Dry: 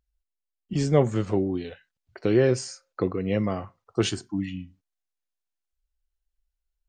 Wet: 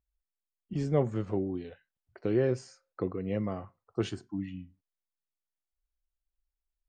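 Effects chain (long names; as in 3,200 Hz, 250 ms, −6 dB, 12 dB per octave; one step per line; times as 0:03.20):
high-shelf EQ 2,900 Hz −11.5 dB
level −6.5 dB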